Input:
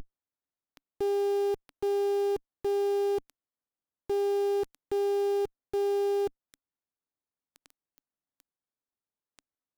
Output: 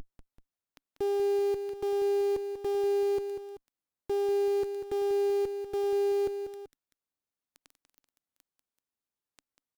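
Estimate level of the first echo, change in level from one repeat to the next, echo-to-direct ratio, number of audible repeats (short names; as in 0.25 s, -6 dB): -9.0 dB, -5.5 dB, -8.0 dB, 2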